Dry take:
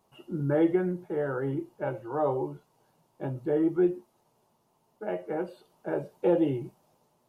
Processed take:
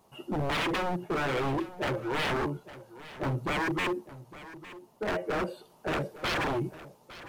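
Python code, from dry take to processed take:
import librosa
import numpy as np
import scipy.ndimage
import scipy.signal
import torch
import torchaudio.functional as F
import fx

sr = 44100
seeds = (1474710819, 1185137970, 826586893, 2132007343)

y = 10.0 ** (-31.0 / 20.0) * (np.abs((x / 10.0 ** (-31.0 / 20.0) + 3.0) % 4.0 - 2.0) - 1.0)
y = y + 10.0 ** (-16.5 / 20.0) * np.pad(y, (int(858 * sr / 1000.0), 0))[:len(y)]
y = y * 10.0 ** (6.5 / 20.0)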